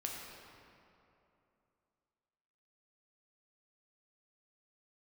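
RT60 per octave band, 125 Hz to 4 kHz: 2.9, 3.0, 2.9, 2.8, 2.2, 1.7 s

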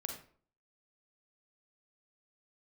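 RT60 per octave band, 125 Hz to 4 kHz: 0.55, 0.55, 0.50, 0.45, 0.40, 0.30 s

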